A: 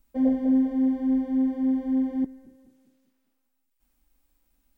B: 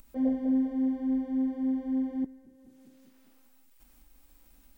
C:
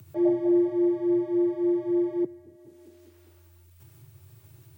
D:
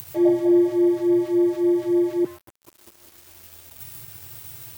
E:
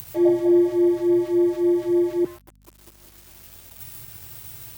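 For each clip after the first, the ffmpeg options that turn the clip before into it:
ffmpeg -i in.wav -af "acompressor=mode=upward:threshold=-38dB:ratio=2.5,volume=-5dB" out.wav
ffmpeg -i in.wav -af "afreqshift=87,equalizer=frequency=170:width_type=o:width=1:gain=6,volume=3.5dB" out.wav
ffmpeg -i in.wav -af "crystalizer=i=4:c=0,aeval=exprs='val(0)*gte(abs(val(0)),0.00668)':channel_layout=same,volume=4.5dB" out.wav
ffmpeg -i in.wav -af "aeval=exprs='val(0)+0.002*(sin(2*PI*50*n/s)+sin(2*PI*2*50*n/s)/2+sin(2*PI*3*50*n/s)/3+sin(2*PI*4*50*n/s)/4+sin(2*PI*5*50*n/s)/5)':channel_layout=same" out.wav

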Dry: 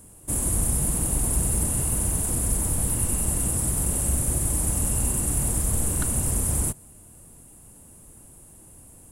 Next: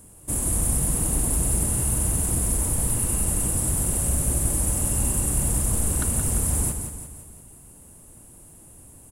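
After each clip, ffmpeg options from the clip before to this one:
ffmpeg -i in.wav -af "aecho=1:1:173|346|519|692|865|1038:0.422|0.211|0.105|0.0527|0.0264|0.0132" out.wav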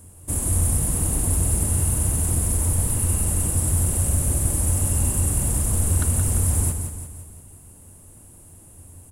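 ffmpeg -i in.wav -af "equalizer=frequency=88:width_type=o:width=0.22:gain=14.5" out.wav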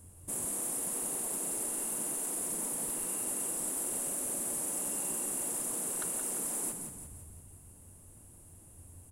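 ffmpeg -i in.wav -af "afftfilt=real='re*lt(hypot(re,im),0.158)':imag='im*lt(hypot(re,im),0.158)':win_size=1024:overlap=0.75,volume=-8dB" out.wav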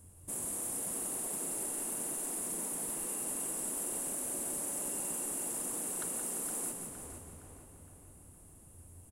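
ffmpeg -i in.wav -filter_complex "[0:a]asplit=2[link_01][link_02];[link_02]adelay=464,lowpass=frequency=4000:poles=1,volume=-6dB,asplit=2[link_03][link_04];[link_04]adelay=464,lowpass=frequency=4000:poles=1,volume=0.51,asplit=2[link_05][link_06];[link_06]adelay=464,lowpass=frequency=4000:poles=1,volume=0.51,asplit=2[link_07][link_08];[link_08]adelay=464,lowpass=frequency=4000:poles=1,volume=0.51,asplit=2[link_09][link_10];[link_10]adelay=464,lowpass=frequency=4000:poles=1,volume=0.51,asplit=2[link_11][link_12];[link_12]adelay=464,lowpass=frequency=4000:poles=1,volume=0.51[link_13];[link_01][link_03][link_05][link_07][link_09][link_11][link_13]amix=inputs=7:normalize=0,volume=-2.5dB" out.wav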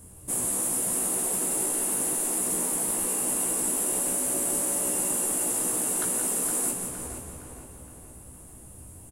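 ffmpeg -i in.wav -filter_complex "[0:a]asplit=2[link_01][link_02];[link_02]adelay=16,volume=-3dB[link_03];[link_01][link_03]amix=inputs=2:normalize=0,volume=8.5dB" out.wav

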